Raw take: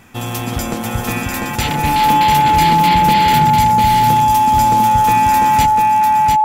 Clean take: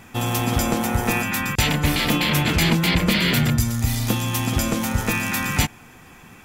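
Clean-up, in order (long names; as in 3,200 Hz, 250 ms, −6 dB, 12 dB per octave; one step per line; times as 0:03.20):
notch filter 860 Hz, Q 30
echo removal 697 ms −4 dB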